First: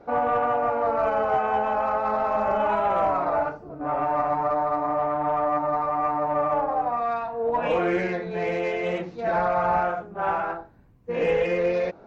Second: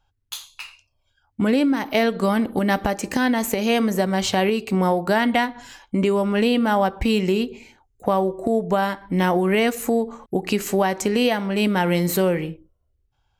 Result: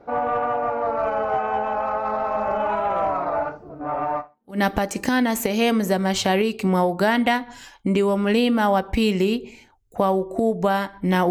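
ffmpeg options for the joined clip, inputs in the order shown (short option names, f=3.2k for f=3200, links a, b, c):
-filter_complex "[0:a]apad=whole_dur=11.3,atrim=end=11.3,atrim=end=4.59,asetpts=PTS-STARTPTS[a];[1:a]atrim=start=2.25:end=9.38,asetpts=PTS-STARTPTS[b];[a][b]acrossfade=d=0.42:c1=exp:c2=exp"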